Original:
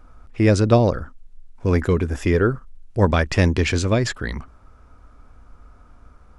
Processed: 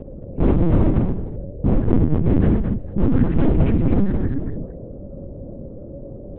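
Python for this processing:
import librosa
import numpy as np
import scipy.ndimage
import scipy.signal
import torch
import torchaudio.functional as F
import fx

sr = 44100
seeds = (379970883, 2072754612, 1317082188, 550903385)

p1 = fx.wiener(x, sr, points=25)
p2 = scipy.signal.sosfilt(scipy.signal.butter(2, 1900.0, 'lowpass', fs=sr, output='sos'), p1)
p3 = fx.low_shelf_res(p2, sr, hz=280.0, db=14.0, q=3.0)
p4 = p3 * np.sin(2.0 * np.pi * 75.0 * np.arange(len(p3)) / sr)
p5 = np.clip(10.0 ** (5.5 / 20.0) * p4, -1.0, 1.0) / 10.0 ** (5.5 / 20.0)
p6 = fx.dmg_buzz(p5, sr, base_hz=50.0, harmonics=12, level_db=-31.0, tilt_db=-2, odd_only=False)
p7 = p6 + fx.echo_multitap(p6, sr, ms=(55, 69, 118, 225, 451), db=(-16.0, -14.5, -9.5, -4.5, -20.0), dry=0)
p8 = fx.lpc_vocoder(p7, sr, seeds[0], excitation='pitch_kept', order=8)
y = F.gain(torch.from_numpy(p8), -6.5).numpy()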